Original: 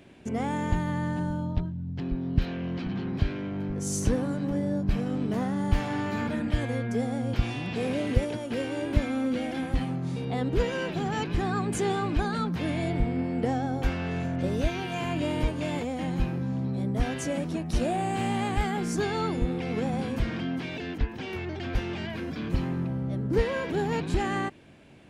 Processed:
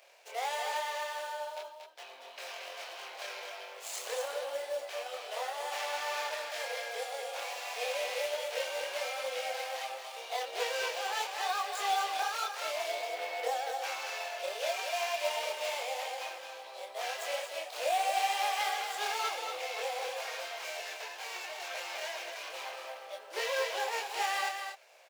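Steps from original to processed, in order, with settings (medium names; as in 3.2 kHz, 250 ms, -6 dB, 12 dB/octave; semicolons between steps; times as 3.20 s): median filter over 15 samples; steep high-pass 540 Hz 48 dB/octave; chorus voices 4, 0.85 Hz, delay 25 ms, depth 3.2 ms; in parallel at -5 dB: short-mantissa float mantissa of 2-bit; on the sum: resonant high shelf 2.1 kHz +6.5 dB, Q 1.5; on a send: delay 233 ms -6.5 dB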